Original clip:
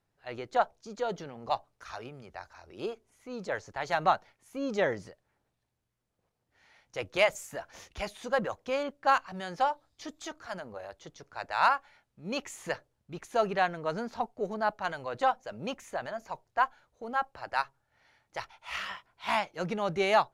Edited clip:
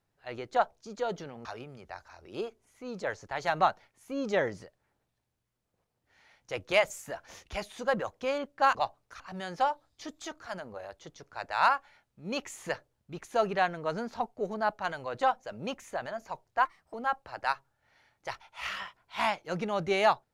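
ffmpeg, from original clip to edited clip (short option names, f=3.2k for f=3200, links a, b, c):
-filter_complex "[0:a]asplit=6[a][b][c][d][e][f];[a]atrim=end=1.452[g];[b]atrim=start=1.898:end=9.202[h];[c]atrim=start=1.448:end=1.902[i];[d]atrim=start=9.198:end=16.654[j];[e]atrim=start=16.65:end=17.03,asetpts=PTS-STARTPTS,asetrate=58212,aresample=44100,atrim=end_sample=12695,asetpts=PTS-STARTPTS[k];[f]atrim=start=17.026[l];[g][h]acrossfade=d=0.004:c1=hsin:c2=hsin[m];[m][i]acrossfade=d=0.004:c1=hsin:c2=hsin[n];[n][j]acrossfade=d=0.004:c1=hsin:c2=hsin[o];[o][k]acrossfade=d=0.004:c1=hsin:c2=hsin[p];[p][l]acrossfade=d=0.004:c1=hsin:c2=hsin"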